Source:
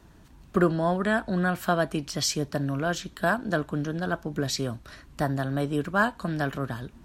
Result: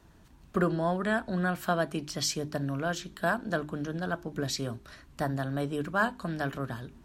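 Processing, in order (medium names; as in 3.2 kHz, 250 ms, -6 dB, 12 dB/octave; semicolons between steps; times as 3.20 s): hum notches 50/100/150/200/250/300/350/400 Hz; trim -3.5 dB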